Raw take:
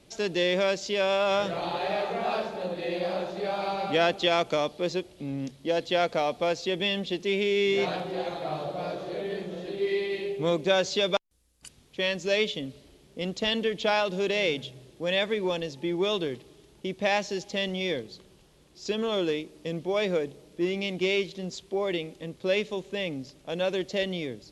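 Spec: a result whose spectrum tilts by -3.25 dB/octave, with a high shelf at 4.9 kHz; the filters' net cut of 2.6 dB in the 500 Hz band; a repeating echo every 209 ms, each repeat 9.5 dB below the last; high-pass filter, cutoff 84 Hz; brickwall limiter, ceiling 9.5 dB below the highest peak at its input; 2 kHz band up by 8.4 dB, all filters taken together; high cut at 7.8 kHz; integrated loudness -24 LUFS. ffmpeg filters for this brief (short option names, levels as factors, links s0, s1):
-af "highpass=84,lowpass=7800,equalizer=f=500:t=o:g=-4,equalizer=f=2000:t=o:g=9,highshelf=f=4900:g=9,alimiter=limit=0.168:level=0:latency=1,aecho=1:1:209|418|627|836:0.335|0.111|0.0365|0.012,volume=1.58"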